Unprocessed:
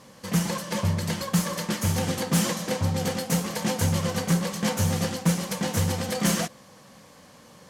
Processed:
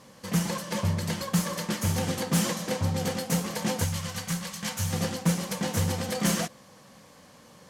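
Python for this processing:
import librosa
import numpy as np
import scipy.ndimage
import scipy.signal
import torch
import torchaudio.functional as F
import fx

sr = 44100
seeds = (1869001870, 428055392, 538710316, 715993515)

y = fx.peak_eq(x, sr, hz=370.0, db=-14.0, octaves=2.2, at=(3.84, 4.93))
y = F.gain(torch.from_numpy(y), -2.0).numpy()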